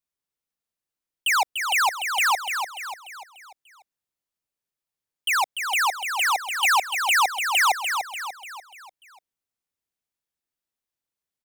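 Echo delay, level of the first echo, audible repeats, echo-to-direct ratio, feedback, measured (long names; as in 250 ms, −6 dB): 294 ms, −6.5 dB, 5, −5.5 dB, 46%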